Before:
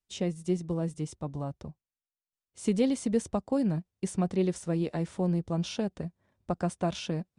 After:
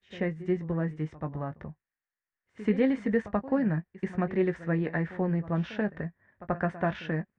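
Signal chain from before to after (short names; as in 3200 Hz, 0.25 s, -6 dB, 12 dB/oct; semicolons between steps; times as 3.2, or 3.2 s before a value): synth low-pass 1800 Hz, resonance Q 6.1; doubler 19 ms -11 dB; reverse echo 84 ms -16.5 dB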